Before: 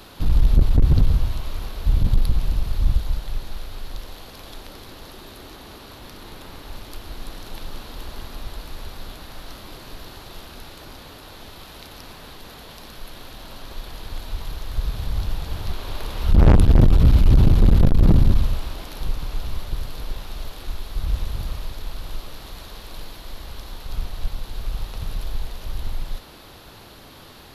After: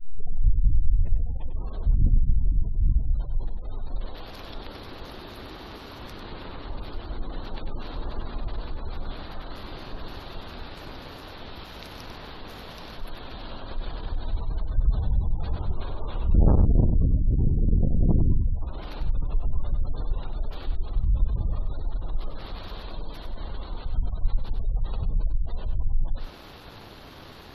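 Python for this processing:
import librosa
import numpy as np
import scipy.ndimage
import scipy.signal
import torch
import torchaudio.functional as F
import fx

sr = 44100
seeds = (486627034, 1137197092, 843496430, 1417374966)

p1 = fx.tape_start_head(x, sr, length_s=1.71)
p2 = fx.high_shelf(p1, sr, hz=4900.0, db=-7.0)
p3 = fx.leveller(p2, sr, passes=1)
p4 = fx.rider(p3, sr, range_db=4, speed_s=2.0)
p5 = fx.spec_gate(p4, sr, threshold_db=-30, keep='strong')
p6 = p5 + fx.echo_single(p5, sr, ms=97, db=-7.5, dry=0)
y = F.gain(torch.from_numpy(p6), -6.0).numpy()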